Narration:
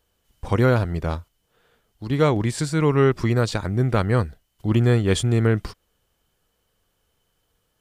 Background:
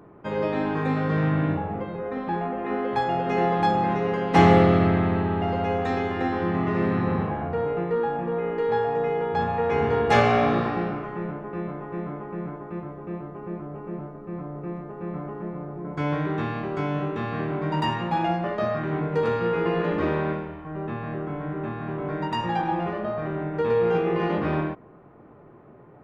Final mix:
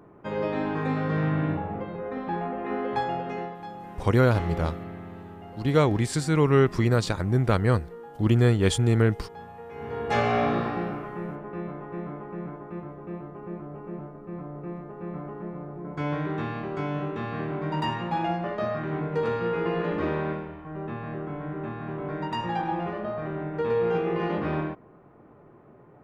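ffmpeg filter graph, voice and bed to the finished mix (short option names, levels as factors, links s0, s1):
-filter_complex "[0:a]adelay=3550,volume=0.794[s0];[1:a]volume=4.22,afade=t=out:st=2.98:d=0.58:silence=0.16788,afade=t=in:st=9.74:d=0.66:silence=0.177828[s1];[s0][s1]amix=inputs=2:normalize=0"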